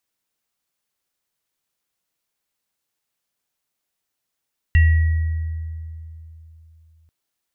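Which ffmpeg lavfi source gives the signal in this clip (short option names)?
-f lavfi -i "aevalsrc='0.355*pow(10,-3*t/3.17)*sin(2*PI*80.7*t)+0.0944*pow(10,-3*t/1.47)*sin(2*PI*1920*t)+0.0398*pow(10,-3*t/0.42)*sin(2*PI*2740*t)':d=2.34:s=44100"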